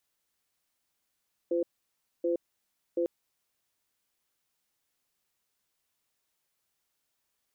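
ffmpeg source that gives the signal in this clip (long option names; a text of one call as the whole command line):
ffmpeg -f lavfi -i "aevalsrc='0.0398*(sin(2*PI*344*t)+sin(2*PI*512*t))*clip(min(mod(t,0.73),0.12-mod(t,0.73))/0.005,0,1)':duration=1.55:sample_rate=44100" out.wav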